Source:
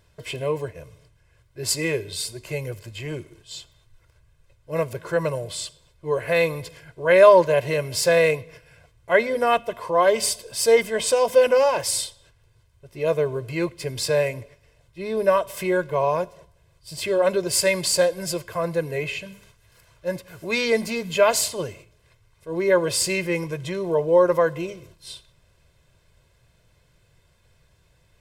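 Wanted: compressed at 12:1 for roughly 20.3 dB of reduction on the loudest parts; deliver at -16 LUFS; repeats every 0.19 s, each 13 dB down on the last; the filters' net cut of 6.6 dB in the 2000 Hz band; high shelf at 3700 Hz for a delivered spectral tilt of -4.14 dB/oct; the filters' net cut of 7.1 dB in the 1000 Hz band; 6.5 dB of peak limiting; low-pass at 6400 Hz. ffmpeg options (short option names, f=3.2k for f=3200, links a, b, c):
-af "lowpass=6.4k,equalizer=f=1k:t=o:g=-7.5,equalizer=f=2k:t=o:g=-7.5,highshelf=f=3.7k:g=4.5,acompressor=threshold=-33dB:ratio=12,alimiter=level_in=5dB:limit=-24dB:level=0:latency=1,volume=-5dB,aecho=1:1:190|380|570:0.224|0.0493|0.0108,volume=22.5dB"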